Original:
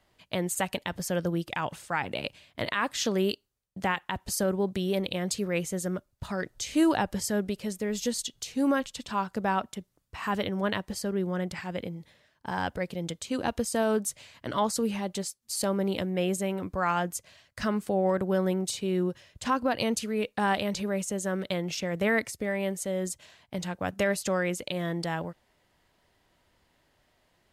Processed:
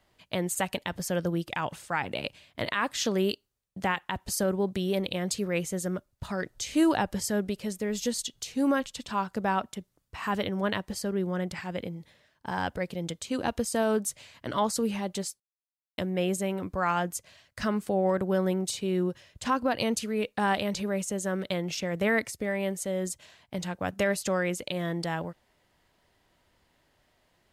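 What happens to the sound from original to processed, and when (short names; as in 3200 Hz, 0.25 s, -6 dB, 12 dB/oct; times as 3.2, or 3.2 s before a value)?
15.4–15.98 mute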